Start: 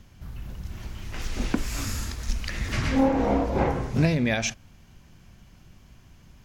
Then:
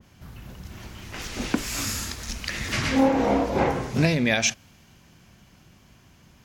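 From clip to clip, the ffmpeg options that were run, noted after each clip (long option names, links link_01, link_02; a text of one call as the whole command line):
ffmpeg -i in.wav -af "highpass=frequency=150:poles=1,adynamicequalizer=threshold=0.01:dfrequency=2000:dqfactor=0.7:tfrequency=2000:tqfactor=0.7:attack=5:release=100:ratio=0.375:range=2:mode=boostabove:tftype=highshelf,volume=2.5dB" out.wav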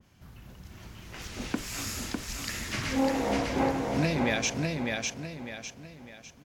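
ffmpeg -i in.wav -af "aecho=1:1:602|1204|1806|2408|3010:0.708|0.269|0.102|0.0388|0.0148,volume=-7dB" out.wav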